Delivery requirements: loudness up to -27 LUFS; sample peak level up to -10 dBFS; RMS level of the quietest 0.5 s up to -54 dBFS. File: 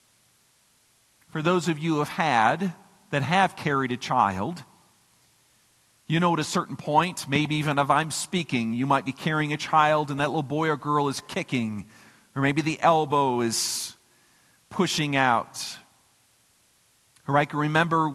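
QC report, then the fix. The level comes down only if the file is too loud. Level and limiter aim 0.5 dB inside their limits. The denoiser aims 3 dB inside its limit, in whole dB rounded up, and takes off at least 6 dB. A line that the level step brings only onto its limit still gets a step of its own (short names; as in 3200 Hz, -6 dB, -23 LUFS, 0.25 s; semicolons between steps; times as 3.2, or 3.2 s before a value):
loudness -24.5 LUFS: fail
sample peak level -6.0 dBFS: fail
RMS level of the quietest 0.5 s -63 dBFS: OK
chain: gain -3 dB; limiter -10.5 dBFS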